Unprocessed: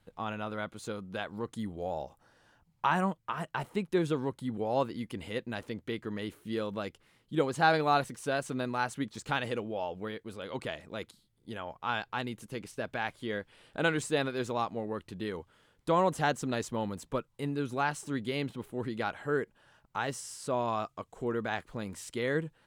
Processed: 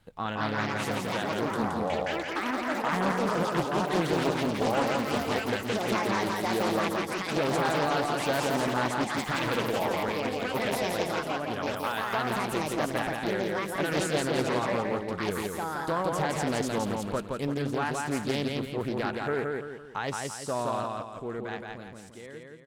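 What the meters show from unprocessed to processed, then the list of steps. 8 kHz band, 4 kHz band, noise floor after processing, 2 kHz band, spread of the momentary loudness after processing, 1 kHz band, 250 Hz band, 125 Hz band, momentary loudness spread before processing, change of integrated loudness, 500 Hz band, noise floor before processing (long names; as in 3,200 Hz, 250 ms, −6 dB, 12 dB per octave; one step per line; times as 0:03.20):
+6.5 dB, +6.5 dB, −43 dBFS, +4.5 dB, 6 LU, +4.0 dB, +5.0 dB, +4.0 dB, 11 LU, +4.5 dB, +4.5 dB, −71 dBFS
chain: fade-out on the ending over 3.05 s
brickwall limiter −24 dBFS, peak gain reduction 11 dB
delay with pitch and tempo change per echo 235 ms, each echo +5 semitones, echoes 3
repeating echo 170 ms, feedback 41%, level −3 dB
highs frequency-modulated by the lows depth 0.57 ms
level +4 dB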